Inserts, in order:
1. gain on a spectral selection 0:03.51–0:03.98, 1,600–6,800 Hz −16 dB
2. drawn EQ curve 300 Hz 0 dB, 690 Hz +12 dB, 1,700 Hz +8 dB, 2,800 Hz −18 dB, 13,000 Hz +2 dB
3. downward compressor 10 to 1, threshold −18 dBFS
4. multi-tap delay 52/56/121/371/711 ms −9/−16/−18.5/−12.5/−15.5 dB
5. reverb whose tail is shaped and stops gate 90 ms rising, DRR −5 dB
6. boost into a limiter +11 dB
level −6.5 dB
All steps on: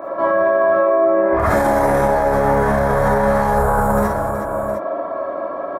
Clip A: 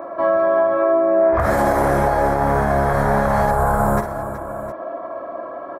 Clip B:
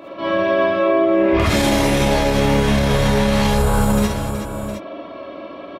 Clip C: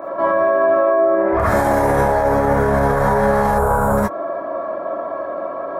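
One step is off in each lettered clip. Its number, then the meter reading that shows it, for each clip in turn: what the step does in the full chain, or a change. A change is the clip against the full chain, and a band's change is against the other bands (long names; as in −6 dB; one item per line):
5, change in crest factor +1.5 dB
2, 1 kHz band −9.5 dB
4, change in momentary loudness spread +1 LU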